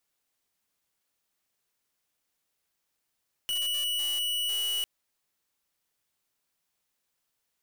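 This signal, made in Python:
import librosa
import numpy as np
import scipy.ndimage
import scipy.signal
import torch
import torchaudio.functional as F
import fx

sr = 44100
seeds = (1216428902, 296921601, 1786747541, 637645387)

y = fx.pulse(sr, length_s=1.35, hz=2940.0, level_db=-29.5, duty_pct=44)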